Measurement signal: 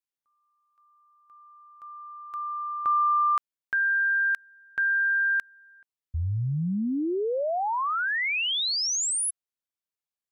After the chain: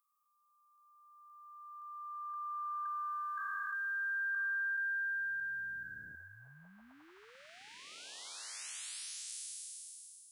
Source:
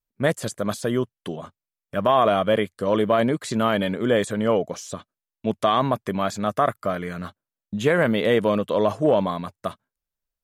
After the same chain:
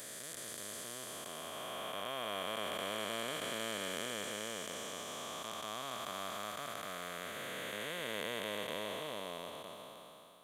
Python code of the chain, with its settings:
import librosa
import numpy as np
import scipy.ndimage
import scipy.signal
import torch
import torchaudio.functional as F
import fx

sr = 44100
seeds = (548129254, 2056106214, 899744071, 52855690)

y = fx.spec_blur(x, sr, span_ms=1450.0)
y = librosa.effects.preemphasis(y, coef=0.97, zi=[0.0])
y = y * 10.0 ** (6.5 / 20.0)